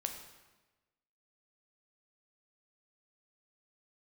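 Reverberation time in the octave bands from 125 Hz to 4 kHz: 1.3 s, 1.2 s, 1.2 s, 1.1 s, 1.1 s, 0.95 s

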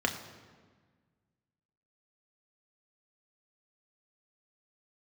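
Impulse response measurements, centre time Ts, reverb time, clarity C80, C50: 21 ms, 1.5 s, 11.0 dB, 10.0 dB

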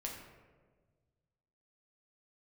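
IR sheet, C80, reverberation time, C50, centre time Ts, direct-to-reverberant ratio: 6.0 dB, 1.5 s, 4.0 dB, 48 ms, -2.0 dB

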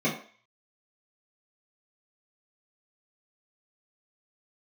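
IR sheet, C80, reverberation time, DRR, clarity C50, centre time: 11.5 dB, 0.45 s, -7.5 dB, 8.0 dB, 25 ms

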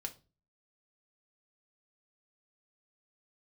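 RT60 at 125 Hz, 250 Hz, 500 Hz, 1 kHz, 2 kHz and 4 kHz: 0.55 s, 0.50 s, 0.35 s, 0.30 s, 0.25 s, 0.30 s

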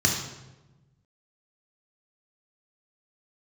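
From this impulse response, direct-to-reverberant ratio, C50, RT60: -1.0 dB, 4.0 dB, 1.1 s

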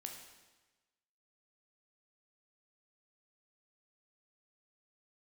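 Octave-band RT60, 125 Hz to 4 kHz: 1.3 s, 1.2 s, 1.2 s, 1.2 s, 1.2 s, 1.1 s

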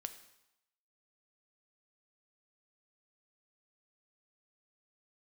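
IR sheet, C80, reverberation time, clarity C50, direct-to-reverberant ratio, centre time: 14.0 dB, 0.85 s, 12.0 dB, 9.0 dB, 10 ms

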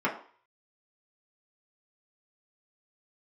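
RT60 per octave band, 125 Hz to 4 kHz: 0.25 s, 0.40 s, 0.40 s, 0.50 s, 0.45 s, 0.45 s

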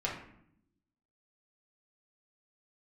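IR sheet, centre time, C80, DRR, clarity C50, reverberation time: 34 ms, 8.5 dB, -5.0 dB, 5.0 dB, 0.70 s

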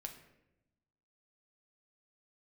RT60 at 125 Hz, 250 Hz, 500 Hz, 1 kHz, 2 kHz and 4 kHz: 1.4 s, 1.4 s, 1.0 s, 0.75 s, 0.80 s, 0.60 s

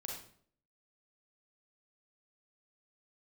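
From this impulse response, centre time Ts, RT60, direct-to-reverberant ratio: 42 ms, 0.55 s, -1.5 dB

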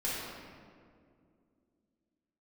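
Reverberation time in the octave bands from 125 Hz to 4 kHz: 2.7 s, 3.4 s, 2.6 s, 1.9 s, 1.6 s, 1.2 s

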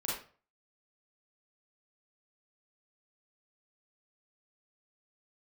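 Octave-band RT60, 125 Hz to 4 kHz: 0.50 s, 0.40 s, 0.40 s, 0.40 s, 0.35 s, 0.30 s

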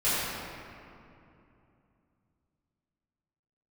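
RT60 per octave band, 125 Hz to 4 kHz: 3.9 s, 3.6 s, 2.9 s, 2.6 s, 2.2 s, 1.5 s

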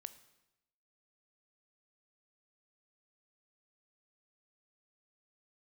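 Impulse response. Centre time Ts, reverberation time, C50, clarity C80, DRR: 5 ms, 0.90 s, 15.0 dB, 17.0 dB, 12.5 dB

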